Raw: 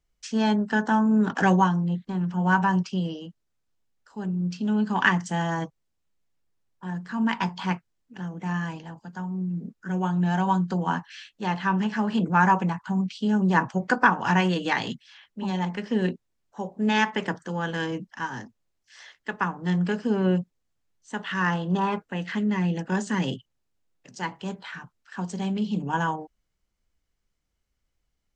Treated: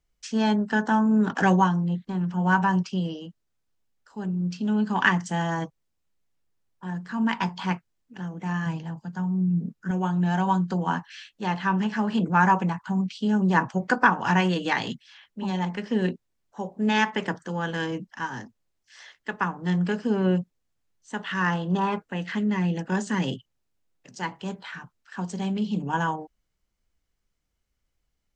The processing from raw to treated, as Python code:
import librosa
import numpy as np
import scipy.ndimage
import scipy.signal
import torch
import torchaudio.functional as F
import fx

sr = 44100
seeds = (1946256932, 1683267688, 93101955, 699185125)

y = fx.peak_eq(x, sr, hz=150.0, db=8.5, octaves=0.77, at=(8.66, 9.91))